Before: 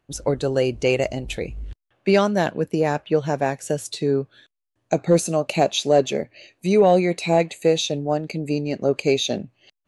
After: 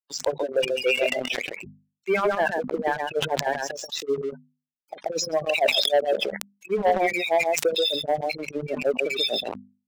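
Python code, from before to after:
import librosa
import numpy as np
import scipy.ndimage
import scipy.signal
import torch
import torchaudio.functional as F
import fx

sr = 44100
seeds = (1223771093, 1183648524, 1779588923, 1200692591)

y = fx.freq_compress(x, sr, knee_hz=3400.0, ratio=1.5)
y = fx.low_shelf(y, sr, hz=340.0, db=-9.0)
y = y + 10.0 ** (-6.0 / 20.0) * np.pad(y, (int(132 * sr / 1000.0), 0))[:len(y)]
y = np.where(np.abs(y) >= 10.0 ** (-35.0 / 20.0), y, 0.0)
y = scipy.signal.sosfilt(scipy.signal.butter(4, 67.0, 'highpass', fs=sr, output='sos'), y)
y = fx.spec_gate(y, sr, threshold_db=-15, keep='strong')
y = fx.filter_lfo_highpass(y, sr, shape='sine', hz=6.5, low_hz=310.0, high_hz=3900.0, q=0.79)
y = fx.hum_notches(y, sr, base_hz=50, count=5)
y = fx.leveller(y, sr, passes=2)
y = fx.sustainer(y, sr, db_per_s=42.0)
y = y * 10.0 ** (-4.0 / 20.0)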